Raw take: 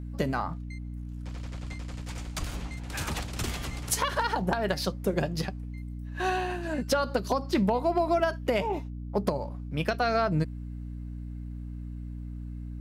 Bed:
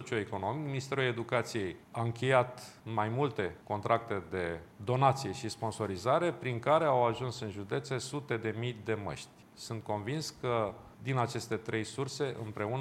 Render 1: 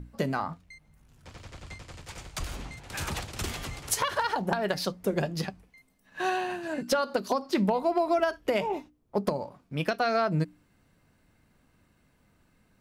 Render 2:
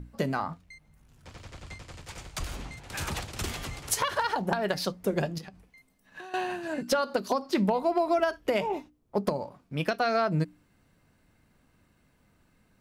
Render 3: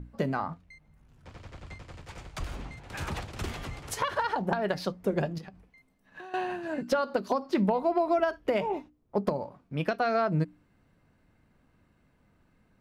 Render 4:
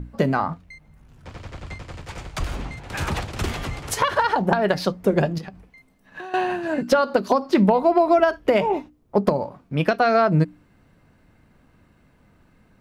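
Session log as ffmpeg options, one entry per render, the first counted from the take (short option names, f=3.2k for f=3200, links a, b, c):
-af "bandreject=f=60:t=h:w=6,bandreject=f=120:t=h:w=6,bandreject=f=180:t=h:w=6,bandreject=f=240:t=h:w=6,bandreject=f=300:t=h:w=6"
-filter_complex "[0:a]asettb=1/sr,asplit=3[a][b][c];[a]atrim=end=5.384[d];[b]atrim=start=5.38:end=6.34,asetpts=PTS-STARTPTS,afade=t=in:d=0.004:c=qsin,afade=t=out:st=0.956:d=0.004:c=qsin,acompressor=threshold=-39dB:ratio=16:attack=3.2:release=140:knee=1:detection=peak[e];[c]atrim=start=6.336[f];[d][e]acrossfade=d=0.004:c1=hsin:c2=qsin[g];[g][f]acrossfade=d=0.004:c1=qsin:c2=hsin"
-af "highshelf=f=3.8k:g=-11.5"
-af "volume=9dB"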